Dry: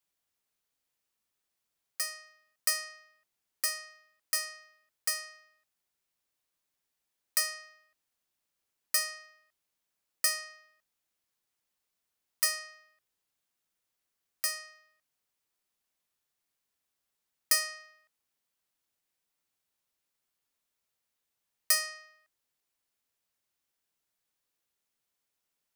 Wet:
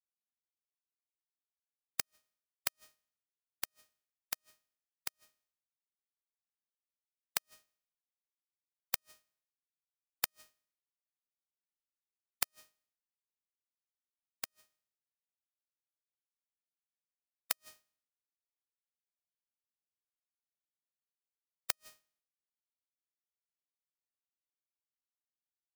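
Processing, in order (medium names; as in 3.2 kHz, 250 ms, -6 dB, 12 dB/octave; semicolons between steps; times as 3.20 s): spectral contrast reduction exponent 0.25; inverted gate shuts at -16 dBFS, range -26 dB; upward expansion 2.5:1, over -54 dBFS; trim +3 dB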